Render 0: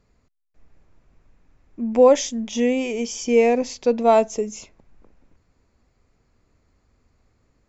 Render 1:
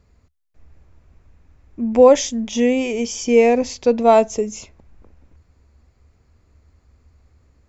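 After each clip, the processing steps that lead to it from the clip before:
parametric band 73 Hz +13.5 dB 0.63 octaves
level +3 dB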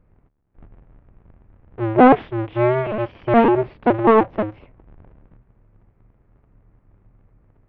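sub-harmonics by changed cycles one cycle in 2, inverted
Gaussian smoothing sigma 4.2 samples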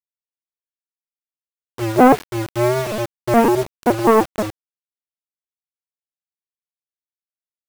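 bit reduction 5 bits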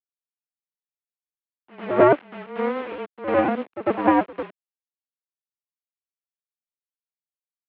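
backwards echo 99 ms −8 dB
power curve on the samples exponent 1.4
single-sideband voice off tune −140 Hz 420–3,100 Hz

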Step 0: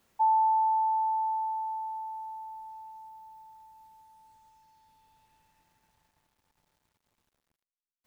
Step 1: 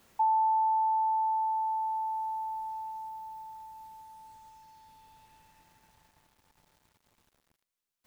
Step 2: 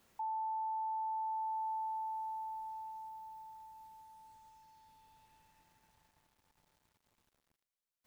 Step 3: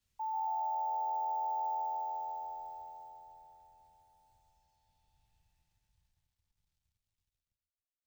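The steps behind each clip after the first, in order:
downward compressor 2 to 1, threshold −39 dBFS, peak gain reduction 9.5 dB; level +7 dB
brickwall limiter −27.5 dBFS, peak gain reduction 7 dB; level −7 dB
bad sample-rate conversion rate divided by 2×, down filtered, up hold; echo with shifted repeats 138 ms, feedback 52%, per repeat −86 Hz, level −9 dB; multiband upward and downward expander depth 70%; level +1.5 dB

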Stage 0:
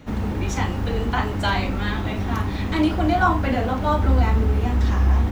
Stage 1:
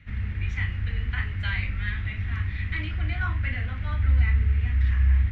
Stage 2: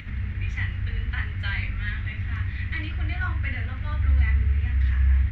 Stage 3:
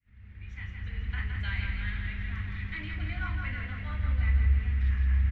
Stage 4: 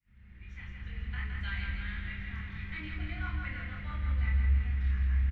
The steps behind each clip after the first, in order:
drawn EQ curve 100 Hz 0 dB, 300 Hz −21 dB, 890 Hz −23 dB, 2,000 Hz +4 dB, 8,500 Hz −29 dB; level −2 dB
upward compression, threshold −30 dBFS
fade in at the beginning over 1.21 s; repeating echo 165 ms, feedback 58%, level −5 dB; level −6.5 dB
double-tracking delay 26 ms −3 dB; convolution reverb RT60 0.85 s, pre-delay 6 ms, DRR 10 dB; level −4.5 dB

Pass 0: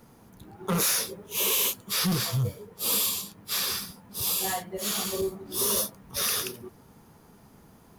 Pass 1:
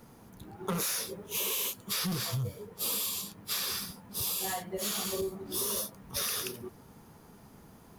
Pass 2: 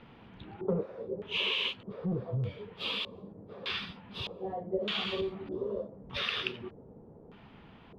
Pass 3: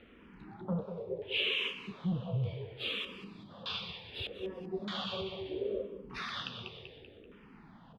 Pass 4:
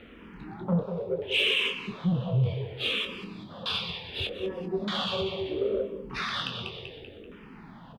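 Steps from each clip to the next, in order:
downward compressor, threshold −30 dBFS, peak gain reduction 8 dB
high shelf with overshoot 4,900 Hz −10.5 dB, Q 1.5; auto-filter low-pass square 0.82 Hz 510–2,900 Hz
on a send: repeating echo 193 ms, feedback 44%, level −10 dB; on the sum: frequency shifter mixed with the dry sound −0.7 Hz
in parallel at −6 dB: soft clipping −34 dBFS, distortion −11 dB; on the sum: double-tracking delay 23 ms −8.5 dB; level +4.5 dB

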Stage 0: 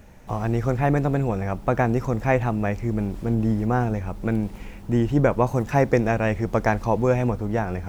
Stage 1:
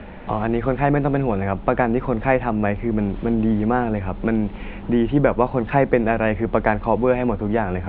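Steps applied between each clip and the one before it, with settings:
Butterworth low-pass 3,600 Hz 48 dB per octave
parametric band 120 Hz −13.5 dB 0.26 octaves
multiband upward and downward compressor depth 40%
level +3.5 dB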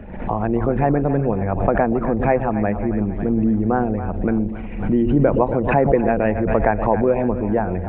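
spectral envelope exaggerated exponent 1.5
echo with a time of its own for lows and highs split 630 Hz, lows 121 ms, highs 274 ms, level −11 dB
background raised ahead of every attack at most 64 dB per second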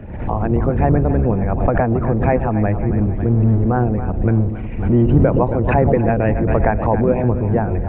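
sub-octave generator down 1 octave, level +3 dB

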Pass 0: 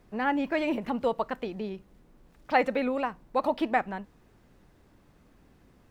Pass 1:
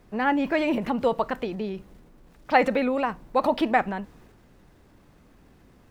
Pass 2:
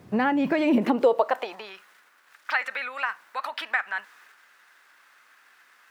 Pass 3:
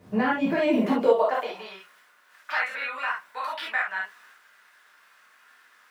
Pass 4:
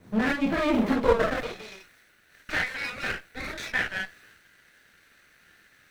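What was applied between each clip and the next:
transient designer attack +1 dB, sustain +5 dB; level +3.5 dB
downward compressor 6 to 1, threshold −26 dBFS, peak gain reduction 12.5 dB; high-pass filter sweep 120 Hz → 1,500 Hz, 0:00.37–0:01.81; level +5 dB
reverb whose tail is shaped and stops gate 90 ms flat, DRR −6 dB; level −7 dB
lower of the sound and its delayed copy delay 0.5 ms

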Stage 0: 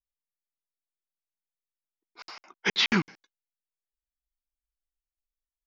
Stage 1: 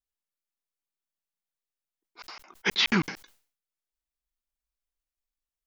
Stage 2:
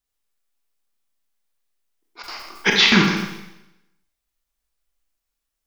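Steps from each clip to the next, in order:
level that may fall only so fast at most 120 dB per second
four-comb reverb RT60 0.9 s, combs from 27 ms, DRR 0.5 dB; level +8 dB

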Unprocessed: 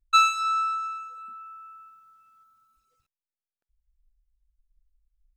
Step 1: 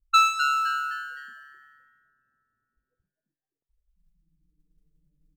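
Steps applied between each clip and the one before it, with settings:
low-pass that shuts in the quiet parts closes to 430 Hz, open at −22.5 dBFS
noise that follows the level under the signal 30 dB
echo with shifted repeats 257 ms, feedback 35%, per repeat +140 Hz, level −9.5 dB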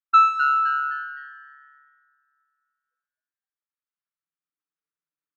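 four-pole ladder band-pass 1,500 Hz, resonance 50%
level +9 dB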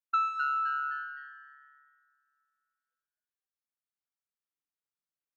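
downward compressor 2.5 to 1, threshold −22 dBFS, peak gain reduction 7.5 dB
level −6.5 dB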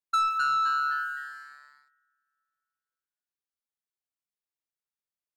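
leveller curve on the samples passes 2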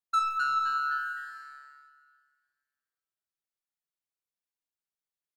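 flanger 0.66 Hz, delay 3.9 ms, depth 2.9 ms, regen +83%
repeating echo 305 ms, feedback 51%, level −21 dB
rectangular room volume 2,400 cubic metres, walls furnished, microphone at 0.63 metres
level +1 dB

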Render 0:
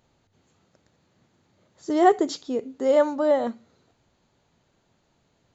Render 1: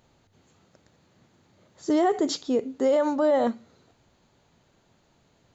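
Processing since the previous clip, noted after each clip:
brickwall limiter −18.5 dBFS, peak gain reduction 11.5 dB
level +3.5 dB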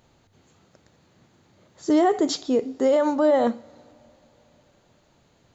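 coupled-rooms reverb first 0.55 s, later 3.9 s, from −18 dB, DRR 18.5 dB
level +2.5 dB

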